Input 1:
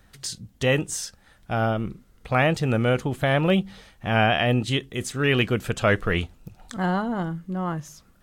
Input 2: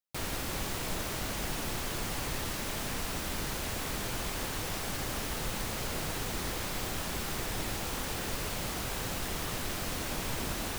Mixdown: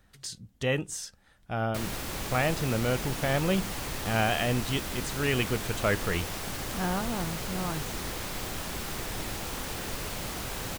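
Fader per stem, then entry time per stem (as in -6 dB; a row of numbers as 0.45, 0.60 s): -6.5, 0.0 dB; 0.00, 1.60 s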